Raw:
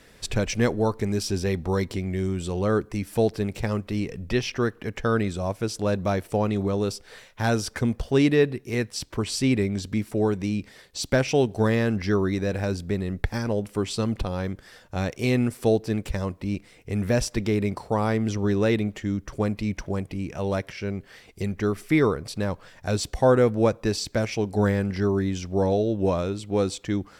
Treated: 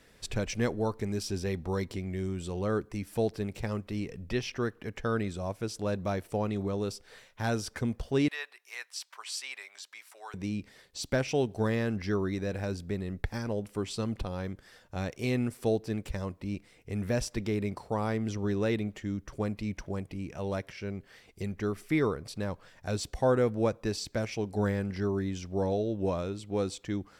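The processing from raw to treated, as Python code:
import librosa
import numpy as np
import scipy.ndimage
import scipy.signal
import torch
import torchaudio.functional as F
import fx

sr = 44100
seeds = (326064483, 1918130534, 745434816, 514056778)

y = fx.highpass(x, sr, hz=880.0, slope=24, at=(8.28, 10.34))
y = F.gain(torch.from_numpy(y), -7.0).numpy()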